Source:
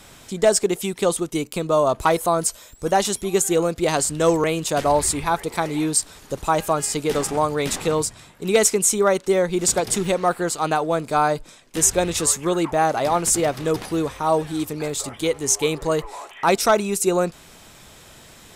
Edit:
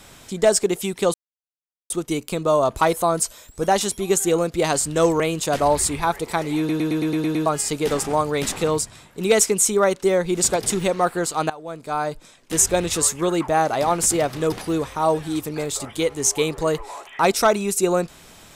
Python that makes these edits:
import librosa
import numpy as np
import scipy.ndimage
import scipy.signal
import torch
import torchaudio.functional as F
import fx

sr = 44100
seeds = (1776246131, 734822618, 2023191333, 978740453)

y = fx.edit(x, sr, fx.insert_silence(at_s=1.14, length_s=0.76),
    fx.stutter_over(start_s=5.82, slice_s=0.11, count=8),
    fx.fade_in_from(start_s=10.74, length_s=1.04, floor_db=-19.0), tone=tone)